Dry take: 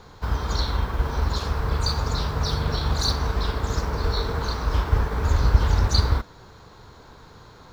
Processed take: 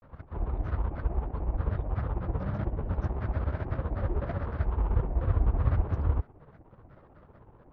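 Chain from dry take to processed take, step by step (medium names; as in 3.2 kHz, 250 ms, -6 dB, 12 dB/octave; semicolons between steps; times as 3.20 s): median filter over 25 samples; Gaussian low-pass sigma 4 samples; granulator, grains 16 per s, pitch spread up and down by 7 st; trim -3.5 dB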